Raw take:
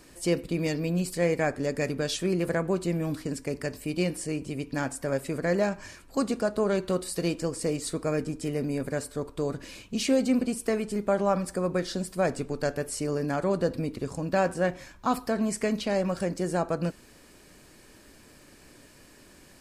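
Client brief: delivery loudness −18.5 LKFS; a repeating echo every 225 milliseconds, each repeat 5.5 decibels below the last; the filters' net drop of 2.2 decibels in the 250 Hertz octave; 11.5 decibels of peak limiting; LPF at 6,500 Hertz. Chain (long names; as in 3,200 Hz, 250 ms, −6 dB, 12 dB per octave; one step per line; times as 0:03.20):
low-pass filter 6,500 Hz
parametric band 250 Hz −3 dB
brickwall limiter −24 dBFS
repeating echo 225 ms, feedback 53%, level −5.5 dB
level +15 dB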